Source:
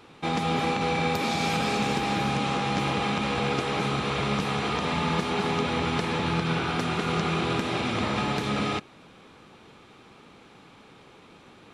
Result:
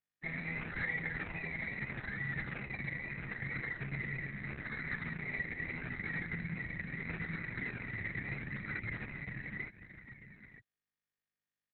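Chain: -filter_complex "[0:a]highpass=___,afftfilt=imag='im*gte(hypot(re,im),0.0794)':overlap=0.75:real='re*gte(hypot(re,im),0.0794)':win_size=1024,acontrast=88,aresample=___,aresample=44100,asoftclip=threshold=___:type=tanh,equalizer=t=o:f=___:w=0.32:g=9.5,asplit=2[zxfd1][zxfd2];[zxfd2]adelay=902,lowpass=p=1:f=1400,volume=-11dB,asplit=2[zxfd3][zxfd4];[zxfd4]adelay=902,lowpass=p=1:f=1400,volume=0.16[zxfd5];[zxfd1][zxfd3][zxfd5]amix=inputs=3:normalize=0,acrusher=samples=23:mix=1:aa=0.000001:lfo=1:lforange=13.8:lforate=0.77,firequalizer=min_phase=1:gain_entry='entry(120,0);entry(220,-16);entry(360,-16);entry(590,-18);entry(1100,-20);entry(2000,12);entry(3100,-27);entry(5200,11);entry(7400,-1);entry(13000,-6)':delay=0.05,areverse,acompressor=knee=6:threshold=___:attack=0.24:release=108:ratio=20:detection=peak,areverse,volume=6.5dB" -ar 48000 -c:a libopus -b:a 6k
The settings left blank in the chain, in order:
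110, 32000, -16.5dB, 5100, -36dB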